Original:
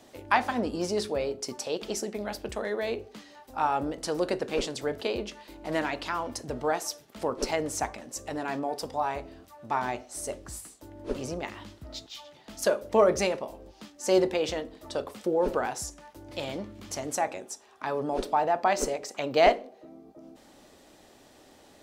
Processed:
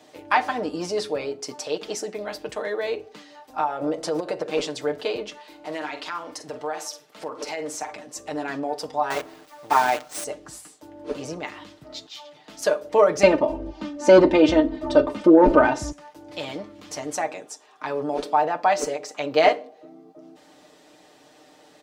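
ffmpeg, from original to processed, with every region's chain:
-filter_complex "[0:a]asettb=1/sr,asplit=3[s0][s1][s2];[s0]atrim=end=3.594[s3];[s1]atrim=start=3.59:end=4.51,asetpts=PTS-STARTPTS,afade=t=in:d=0.004:c=qsin,afade=t=out:st=0.916:d=0.004:c=qsin,equalizer=f=590:t=o:w=1.1:g=9.5,aecho=1:1:5.8:0.36,atrim=end_sample=40572,acompressor=threshold=0.0708:ratio=12:attack=3.2:release=140:knee=1:detection=peak[s4];[s2]atrim=start=4.506[s5];[s3][s4]acrossfade=d=0.004:c1=hsin:c2=qsin[s6];[s6][s5]acrossfade=d=0.004:c1=qsin:c2=hsin,asettb=1/sr,asplit=3[s7][s8][s9];[s7]atrim=end=5.384[s10];[s8]atrim=start=5.38:end=7.93,asetpts=PTS-STARTPTS,afade=t=in:d=0.004:c=qsin,afade=t=out:st=2.546:d=0.004:c=qsin,lowshelf=f=260:g=-9.5,asplit=2[s11][s12];[s12]adelay=47,volume=0.251[s13];[s11][s13]amix=inputs=2:normalize=0,atrim=end_sample=112455,acompressor=threshold=0.0282:ratio=3:attack=3.2:release=140:knee=1:detection=peak[s14];[s9]atrim=start=7.926[s15];[s10][s14]acrossfade=d=0.004:c1=hsin:c2=qsin[s16];[s16][s15]acrossfade=d=0.004:c1=qsin:c2=hsin,asettb=1/sr,asplit=3[s17][s18][s19];[s17]atrim=end=9.104[s20];[s18]atrim=start=9.1:end=10.24,asetpts=PTS-STARTPTS,afade=t=in:d=0.004:c=qsin,afade=t=out:st=1.136:d=0.004:c=qsin,bass=f=250:g=-6,treble=f=4000:g=-1,acontrast=48,acrusher=bits=6:dc=4:mix=0:aa=0.000001[s21];[s19]atrim=start=10.236[s22];[s20][s21]acrossfade=d=0.004:c1=hsin:c2=qsin[s23];[s23][s22]acrossfade=d=0.004:c1=qsin:c2=hsin,asettb=1/sr,asplit=3[s24][s25][s26];[s24]atrim=end=13.234[s27];[s25]atrim=start=13.23:end=15.92,asetpts=PTS-STARTPTS,afade=t=in:d=0.004:c=qsin,afade=t=out:st=2.686:d=0.004:c=qsin,aemphasis=mode=reproduction:type=riaa,aecho=1:1:3.3:0.73,atrim=end_sample=118629,acontrast=84[s28];[s26]atrim=start=15.916[s29];[s27][s28]acrossfade=d=0.004:c1=hsin:c2=qsin[s30];[s30][s29]acrossfade=d=0.004:c1=qsin:c2=hsin,highpass=f=250:p=1,equalizer=f=13000:w=0.64:g=-7.5,aecho=1:1:6.6:0.65,volume=1.33"

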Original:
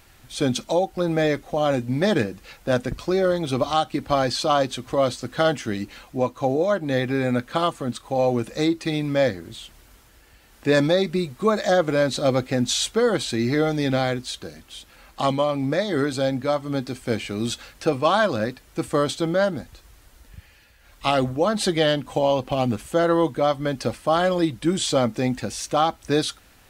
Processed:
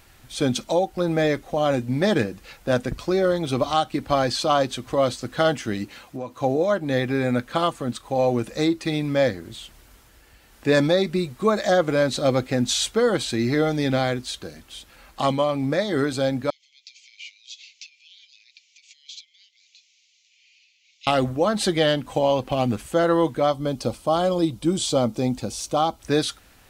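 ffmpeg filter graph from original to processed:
-filter_complex "[0:a]asettb=1/sr,asplit=3[s0][s1][s2];[s0]atrim=end=5.844[s3];[s1]atrim=start=5.84:end=6.41,asetpts=PTS-STARTPTS,afade=t=in:d=0.004:c=qsin,afade=t=out:st=0.566:d=0.004:c=qsin,highpass=78,acompressor=threshold=0.0398:ratio=4:attack=3.2:release=140:knee=1:detection=peak[s4];[s2]atrim=start=6.406[s5];[s3][s4]acrossfade=d=0.004:c1=hsin:c2=qsin[s6];[s6][s5]acrossfade=d=0.004:c1=qsin:c2=hsin,asettb=1/sr,asplit=3[s7][s8][s9];[s7]atrim=end=16.504[s10];[s8]atrim=start=16.5:end=21.07,asetpts=PTS-STARTPTS,afade=t=in:d=0.004:c=qsin,afade=t=out:st=4.566:d=0.004:c=qsin,acompressor=threshold=0.0251:ratio=10:attack=3.2:release=140:knee=1:detection=peak,asuperpass=centerf=4000:order=20:qfactor=0.81[s11];[s9]atrim=start=21.066[s12];[s10][s11]acrossfade=d=0.004:c1=hsin:c2=qsin[s13];[s13][s12]acrossfade=d=0.004:c1=qsin:c2=hsin,asettb=1/sr,asplit=3[s14][s15][s16];[s14]atrim=end=23.504[s17];[s15]atrim=start=23.5:end=26,asetpts=PTS-STARTPTS,afade=t=in:d=0.004:c=qsin,afade=t=out:st=2.496:d=0.004:c=qsin,equalizer=f=1800:t=o:w=0.62:g=-14,bandreject=f=2700:w=24[s18];[s16]atrim=start=25.996[s19];[s17][s18]acrossfade=d=0.004:c1=hsin:c2=qsin[s20];[s20][s19]acrossfade=d=0.004:c1=qsin:c2=hsin"

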